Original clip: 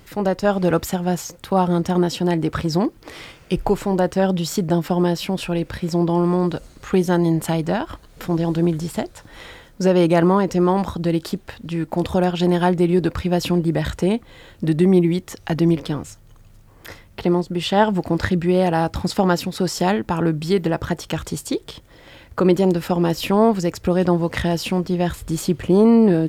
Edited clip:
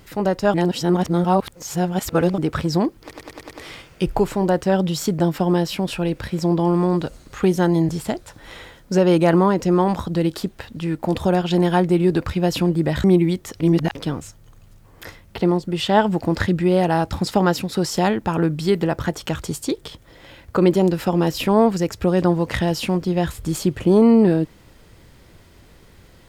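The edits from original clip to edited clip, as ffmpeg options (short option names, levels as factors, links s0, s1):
-filter_complex "[0:a]asplit=12[s0][s1][s2][s3][s4][s5][s6][s7][s8][s9][s10][s11];[s0]atrim=end=0.542[s12];[s1]atrim=start=0.538:end=2.382,asetpts=PTS-STARTPTS,areverse[s13];[s2]atrim=start=2.378:end=3.112[s14];[s3]atrim=start=3.008:end=3.112[s15];[s4]atrim=start=3.008:end=3.112[s16];[s5]atrim=start=3.008:end=3.112[s17];[s6]atrim=start=3.008:end=3.112[s18];[s7]atrim=start=3.008:end=7.392[s19];[s8]atrim=start=8.778:end=13.932[s20];[s9]atrim=start=14.868:end=15.432[s21];[s10]atrim=start=15.428:end=15.782,asetpts=PTS-STARTPTS,areverse[s22];[s11]atrim=start=15.778[s23];[s12][s13]acrossfade=d=0.004:c1=hsin:c2=hsin[s24];[s24][s14]acrossfade=d=0.004:c1=hsin:c2=hsin[s25];[s25][s15]acrossfade=d=0.004:c1=hsin:c2=hsin[s26];[s26][s16]acrossfade=d=0.004:c1=hsin:c2=hsin[s27];[s27][s17]acrossfade=d=0.004:c1=hsin:c2=hsin[s28];[s28][s18]acrossfade=d=0.004:c1=hsin:c2=hsin[s29];[s29][s19]acrossfade=d=0.004:c1=hsin:c2=hsin[s30];[s30][s20]acrossfade=d=0.004:c1=hsin:c2=hsin[s31];[s31][s21]acrossfade=d=0.004:c1=hsin:c2=hsin[s32];[s32][s22]acrossfade=d=0.004:c1=hsin:c2=hsin[s33];[s33][s23]acrossfade=d=0.004:c1=hsin:c2=hsin"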